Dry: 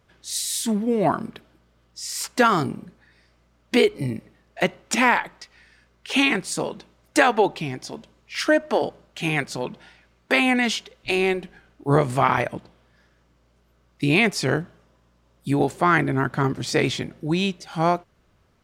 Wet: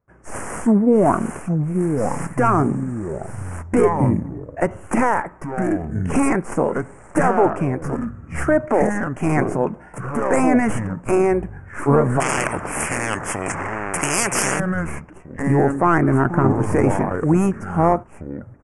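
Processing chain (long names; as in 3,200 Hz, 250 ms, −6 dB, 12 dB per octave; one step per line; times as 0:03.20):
stylus tracing distortion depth 0.38 ms
noise gate with hold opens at −53 dBFS
high-shelf EQ 6,700 Hz −7 dB
brickwall limiter −15 dBFS, peak gain reduction 11 dB
delay with pitch and tempo change per echo 592 ms, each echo −5 semitones, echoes 3, each echo −6 dB
downsampling to 22,050 Hz
Butterworth band-reject 3,900 Hz, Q 0.52
0:12.20–0:14.60: every bin compressed towards the loudest bin 4 to 1
level +8.5 dB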